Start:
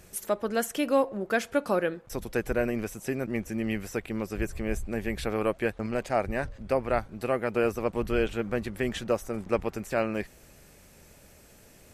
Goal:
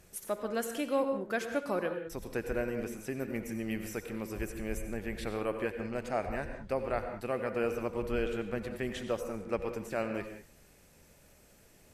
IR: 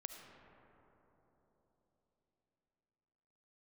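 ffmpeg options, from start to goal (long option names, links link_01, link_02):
-filter_complex "[0:a]asettb=1/sr,asplit=3[link_01][link_02][link_03];[link_01]atrim=end=3.194[link_04];[link_02]atrim=start=3.19:end=4.83,asetpts=PTS-STARTPTS,afade=type=in:duration=0.004:curve=qsin,afade=type=out:start_time=1.636:duration=0.004:curve=qsin,highshelf=frequency=8100:gain=9.5[link_05];[link_03]atrim=start=4.826[link_06];[link_04][link_05]acrossfade=duration=0.004:curve1=hsin:curve2=qsin[link_07];[link_07][link_06]acrossfade=duration=0.004:curve1=qsin:curve2=hsin[link_08];[1:a]atrim=start_sample=2205,afade=type=out:start_time=0.21:duration=0.01,atrim=end_sample=9702,asetrate=33957,aresample=44100[link_09];[link_08][link_09]afir=irnorm=-1:irlink=0,volume=-2.5dB"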